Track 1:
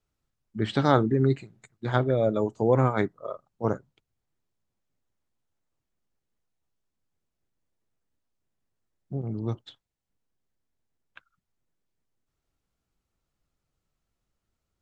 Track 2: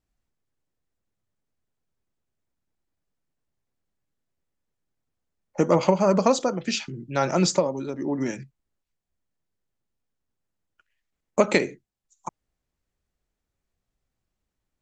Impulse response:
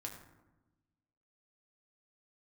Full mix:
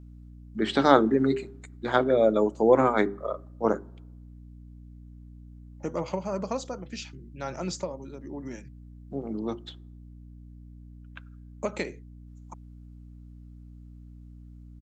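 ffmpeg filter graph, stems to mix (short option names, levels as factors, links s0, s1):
-filter_complex "[0:a]highpass=f=200:w=0.5412,highpass=f=200:w=1.3066,bandreject=f=50:t=h:w=6,bandreject=f=100:t=h:w=6,bandreject=f=150:t=h:w=6,bandreject=f=200:t=h:w=6,bandreject=f=250:t=h:w=6,bandreject=f=300:t=h:w=6,bandreject=f=350:t=h:w=6,bandreject=f=400:t=h:w=6,volume=1.41,asplit=2[s0][s1];[s1]volume=0.119[s2];[1:a]adelay=250,volume=0.266[s3];[2:a]atrim=start_sample=2205[s4];[s2][s4]afir=irnorm=-1:irlink=0[s5];[s0][s3][s5]amix=inputs=3:normalize=0,aeval=exprs='val(0)+0.00562*(sin(2*PI*60*n/s)+sin(2*PI*2*60*n/s)/2+sin(2*PI*3*60*n/s)/3+sin(2*PI*4*60*n/s)/4+sin(2*PI*5*60*n/s)/5)':c=same"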